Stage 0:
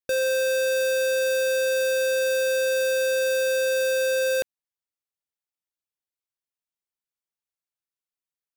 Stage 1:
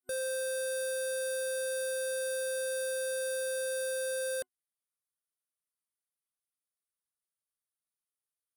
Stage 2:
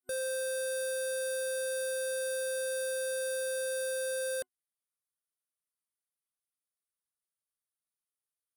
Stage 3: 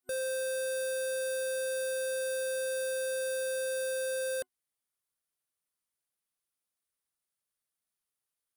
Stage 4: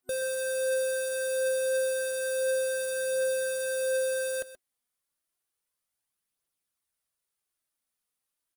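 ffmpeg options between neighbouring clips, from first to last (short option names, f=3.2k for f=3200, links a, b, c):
-af "superequalizer=6b=0.355:9b=0.447:10b=1.58:12b=0.398:16b=3.98,alimiter=limit=-23.5dB:level=0:latency=1:release=104,volume=-7dB"
-af anull
-af "asoftclip=type=tanh:threshold=-34dB,volume=3.5dB"
-af "aphaser=in_gain=1:out_gain=1:delay=4.2:decay=0.34:speed=0.31:type=triangular,aecho=1:1:128:0.188,volume=2.5dB"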